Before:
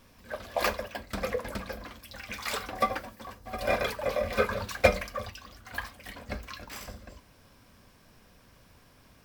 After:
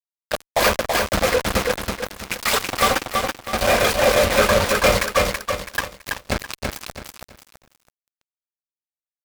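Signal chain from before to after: fuzz box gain 40 dB, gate -34 dBFS; bit-crushed delay 329 ms, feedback 35%, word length 8-bit, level -3.5 dB

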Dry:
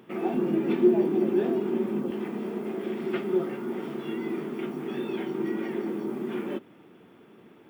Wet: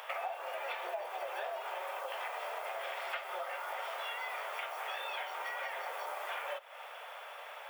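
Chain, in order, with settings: steep high-pass 550 Hz 72 dB/octave; compression 6:1, threshold -52 dBFS, peak gain reduction 20 dB; trim +14.5 dB

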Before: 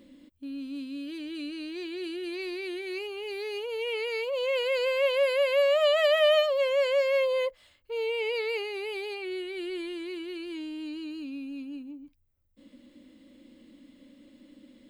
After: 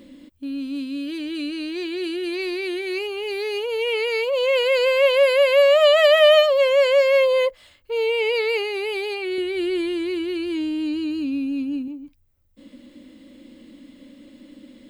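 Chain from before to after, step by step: 9.38–11.88 s: peaking EQ 94 Hz +12 dB 2.5 oct; trim +8.5 dB

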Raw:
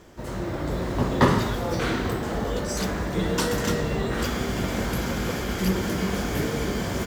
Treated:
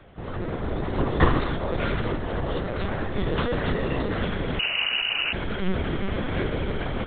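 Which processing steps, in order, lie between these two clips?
LPC vocoder at 8 kHz pitch kept; 4.59–5.33 s: frequency inversion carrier 2.9 kHz

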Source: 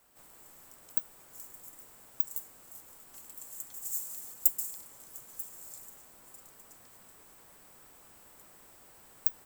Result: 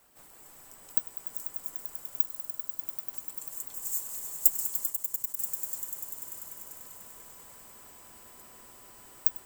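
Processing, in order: reverb removal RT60 0.52 s; 2.23–2.79 s: two resonant band-passes 2.3 kHz, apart 1.7 oct; on a send: echo with a slow build-up 98 ms, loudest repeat 5, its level -10.5 dB; 4.90–5.39 s: on the sum: level held to a coarse grid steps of 16 dB; trim +3 dB

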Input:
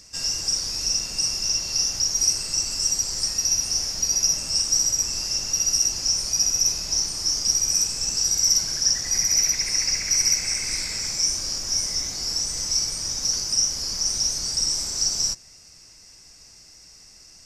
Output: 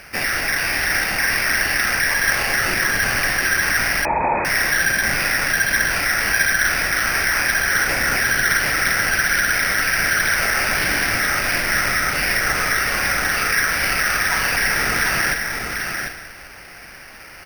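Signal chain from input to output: in parallel at -1.5 dB: compressor with a negative ratio -28 dBFS; on the sum: one-sided clip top -17 dBFS; on a send: delay 743 ms -5.5 dB; on the sum: plate-style reverb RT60 2.5 s, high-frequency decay 0.6×, DRR 5 dB; careless resampling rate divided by 6×, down none, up hold; 4.05–4.45 s: frequency inversion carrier 2.5 kHz

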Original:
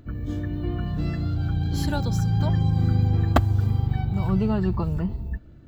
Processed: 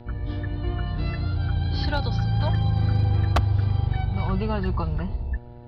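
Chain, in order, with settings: steep low-pass 5 kHz 72 dB/octave; peaking EQ 230 Hz -11.5 dB 1.9 oct; mains buzz 120 Hz, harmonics 8, -49 dBFS -5 dB/octave; hard clipper -19.5 dBFS, distortion -18 dB; trim +4.5 dB

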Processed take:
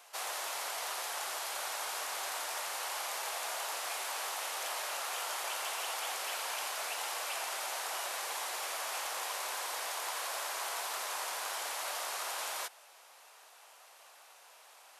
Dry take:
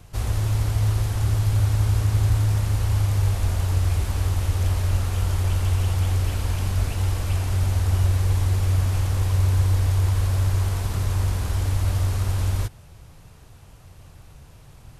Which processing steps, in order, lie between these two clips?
high-pass 640 Hz 24 dB/octave

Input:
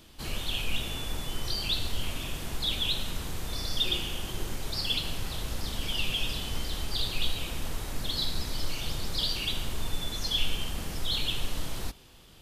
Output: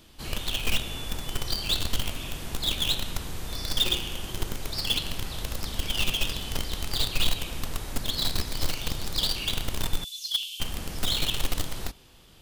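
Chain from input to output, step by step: 10.04–10.60 s: steep high-pass 2.9 kHz 48 dB/octave; in parallel at -6.5 dB: bit crusher 4-bit

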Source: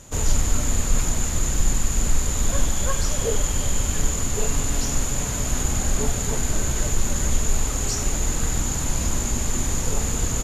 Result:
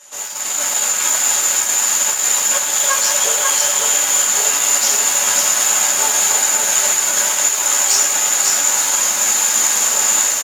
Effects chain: saturation -20.5 dBFS, distortion -10 dB; high-pass 930 Hz 12 dB/octave; reverberation, pre-delay 3 ms, DRR -5.5 dB; level rider gain up to 10 dB; delay 543 ms -3.5 dB

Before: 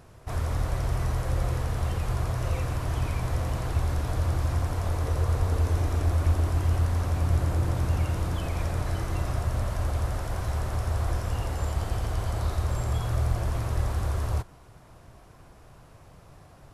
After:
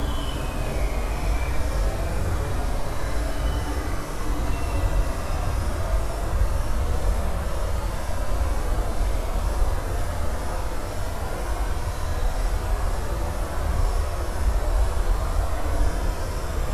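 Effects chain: Paulstretch 5.7×, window 0.10 s, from 8.35 s; frequency shift -35 Hz; trim +4.5 dB

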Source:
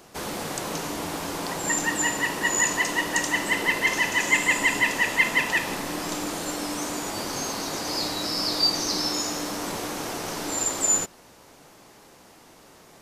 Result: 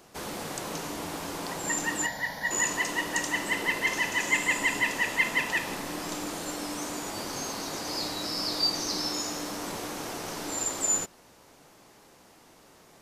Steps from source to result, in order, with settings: 2.06–2.51 s: static phaser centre 1.8 kHz, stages 8; trim -4.5 dB

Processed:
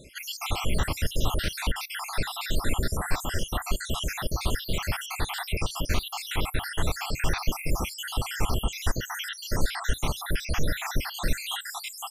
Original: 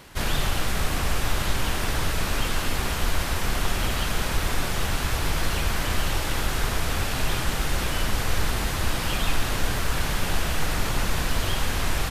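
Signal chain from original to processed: random holes in the spectrogram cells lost 72%; reverberation, pre-delay 4 ms, DRR 25.5 dB; trim +1.5 dB

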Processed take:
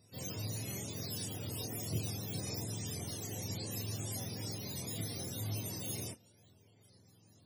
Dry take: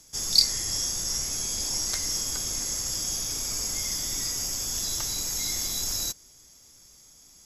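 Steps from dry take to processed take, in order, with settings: spectrum inverted on a logarithmic axis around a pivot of 470 Hz; tilt EQ +2 dB/octave; in parallel at -8.5 dB: saturation -35.5 dBFS, distortion -18 dB; on the sum: chorus voices 2, 1 Hz, delay 28 ms, depth 3 ms; FFT filter 470 Hz 0 dB, 1.3 kHz -15 dB, 5.6 kHz -4 dB, 12 kHz -8 dB; trim +7 dB

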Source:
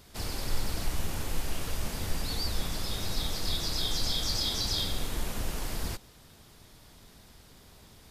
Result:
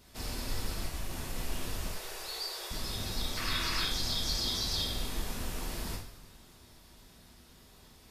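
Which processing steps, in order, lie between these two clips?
0.73–1.36 s: compression, threshold -26 dBFS, peak gain reduction 4.5 dB; 1.87–2.71 s: elliptic high-pass 380 Hz; 3.37–3.85 s: high-order bell 1.7 kHz +12 dB; two-slope reverb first 0.51 s, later 2.5 s, from -18 dB, DRR -1.5 dB; trim -6 dB

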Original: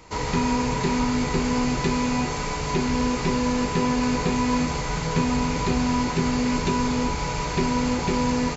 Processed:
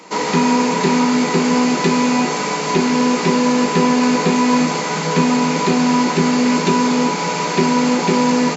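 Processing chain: elliptic high-pass 170 Hz, stop band 40 dB; in parallel at -12 dB: one-sided clip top -22.5 dBFS; on the sum: trim +7.5 dB

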